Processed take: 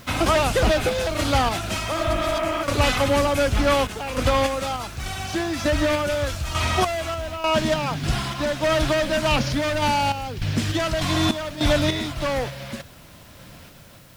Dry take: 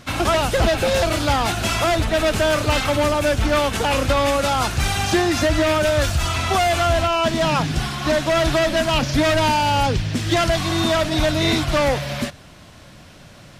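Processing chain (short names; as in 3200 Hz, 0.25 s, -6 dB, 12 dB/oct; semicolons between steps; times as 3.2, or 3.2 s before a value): random-step tremolo 3.5 Hz, depth 75%; added noise blue -55 dBFS; spectral repair 1.91–2.5, 220–3400 Hz before; speed mistake 25 fps video run at 24 fps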